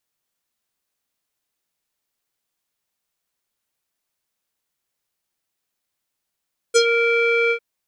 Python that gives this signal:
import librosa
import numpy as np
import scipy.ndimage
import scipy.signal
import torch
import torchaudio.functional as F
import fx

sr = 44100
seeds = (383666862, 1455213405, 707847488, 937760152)

y = fx.sub_voice(sr, note=70, wave='square', cutoff_hz=2300.0, q=4.5, env_oct=2.0, env_s=0.13, attack_ms=23.0, decay_s=0.07, sustain_db=-8, release_s=0.08, note_s=0.77, slope=12)